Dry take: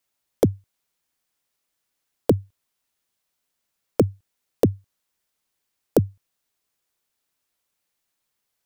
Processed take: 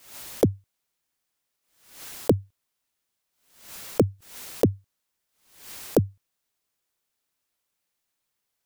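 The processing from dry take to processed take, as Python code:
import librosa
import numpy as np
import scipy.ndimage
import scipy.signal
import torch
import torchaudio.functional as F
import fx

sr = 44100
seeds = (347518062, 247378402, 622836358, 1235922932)

y = fx.pre_swell(x, sr, db_per_s=94.0)
y = F.gain(torch.from_numpy(y), -2.0).numpy()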